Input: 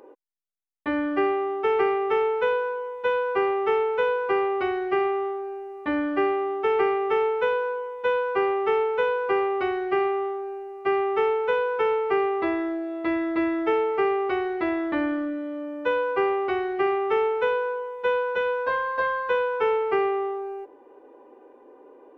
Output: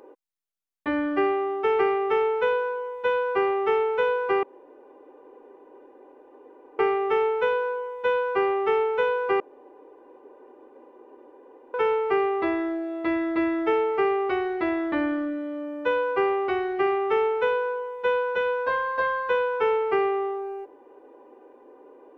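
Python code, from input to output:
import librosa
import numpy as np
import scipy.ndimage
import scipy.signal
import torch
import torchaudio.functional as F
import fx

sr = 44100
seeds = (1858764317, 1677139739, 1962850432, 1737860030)

y = fx.edit(x, sr, fx.room_tone_fill(start_s=4.43, length_s=2.36),
    fx.room_tone_fill(start_s=9.4, length_s=2.34), tone=tone)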